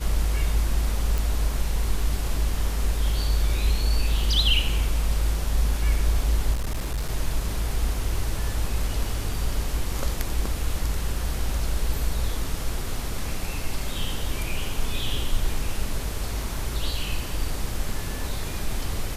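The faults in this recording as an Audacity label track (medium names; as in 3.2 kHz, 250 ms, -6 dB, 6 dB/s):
1.180000	1.180000	pop
6.530000	7.100000	clipped -23 dBFS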